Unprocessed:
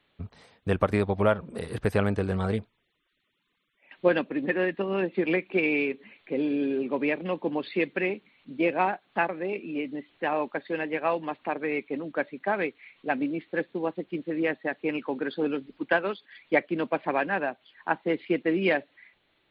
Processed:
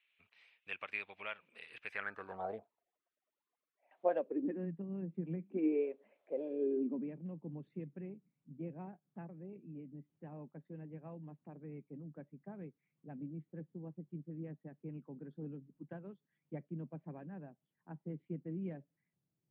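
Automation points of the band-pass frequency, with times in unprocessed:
band-pass, Q 5.3
1.88 s 2500 Hz
2.43 s 700 Hz
4.1 s 700 Hz
4.73 s 160 Hz
5.38 s 160 Hz
5.92 s 600 Hz
6.46 s 600 Hz
7.18 s 150 Hz

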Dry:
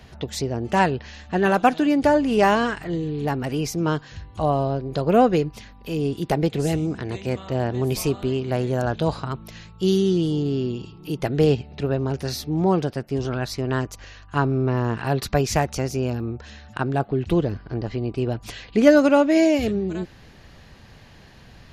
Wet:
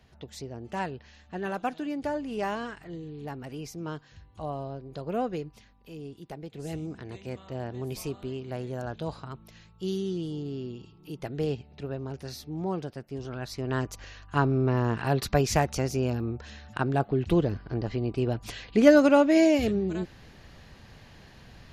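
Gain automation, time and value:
5.52 s -13.5 dB
6.45 s -20 dB
6.76 s -11.5 dB
13.26 s -11.5 dB
13.92 s -3 dB

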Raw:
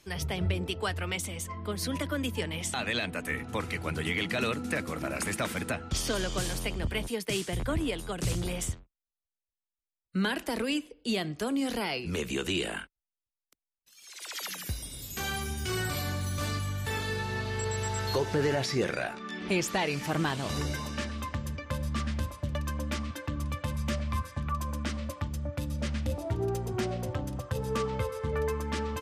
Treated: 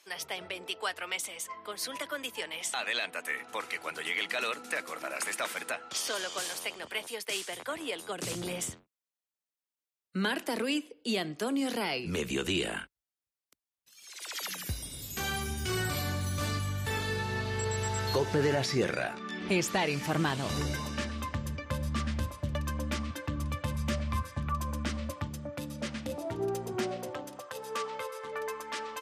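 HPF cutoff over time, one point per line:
7.74 s 600 Hz
8.45 s 200 Hz
11.73 s 200 Hz
12.42 s 54 Hz
25.03 s 54 Hz
25.51 s 190 Hz
26.76 s 190 Hz
27.51 s 600 Hz

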